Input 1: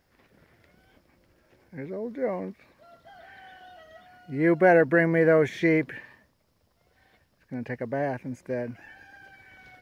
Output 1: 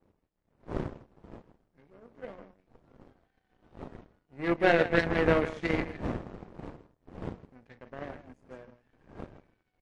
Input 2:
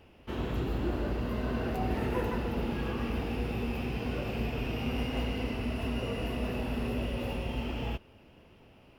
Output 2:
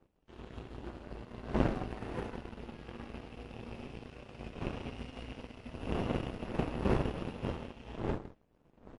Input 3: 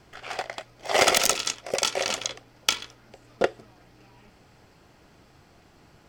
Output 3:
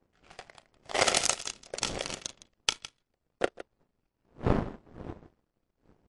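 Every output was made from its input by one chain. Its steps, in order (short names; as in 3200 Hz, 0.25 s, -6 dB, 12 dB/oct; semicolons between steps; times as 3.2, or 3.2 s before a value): wind noise 380 Hz -32 dBFS; on a send: loudspeakers at several distances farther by 12 m -9 dB, 55 m -8 dB; on the sum: added noise brown -47 dBFS; power-law curve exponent 2; MP3 48 kbps 24000 Hz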